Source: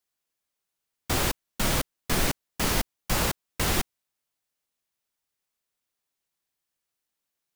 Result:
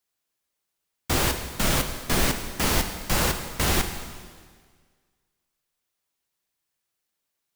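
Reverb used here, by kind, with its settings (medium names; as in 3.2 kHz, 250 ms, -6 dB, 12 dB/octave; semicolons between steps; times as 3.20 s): plate-style reverb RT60 1.7 s, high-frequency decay 0.95×, DRR 6 dB; trim +2 dB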